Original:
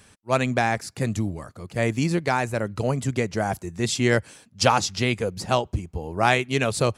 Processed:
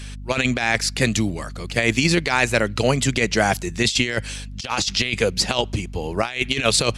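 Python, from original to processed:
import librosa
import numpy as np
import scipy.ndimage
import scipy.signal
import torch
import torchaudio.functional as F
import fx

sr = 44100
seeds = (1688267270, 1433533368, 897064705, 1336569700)

y = fx.weighting(x, sr, curve='D')
y = fx.add_hum(y, sr, base_hz=50, snr_db=21)
y = fx.over_compress(y, sr, threshold_db=-22.0, ratio=-0.5)
y = fx.low_shelf(y, sr, hz=140.0, db=3.5)
y = y * librosa.db_to_amplitude(3.0)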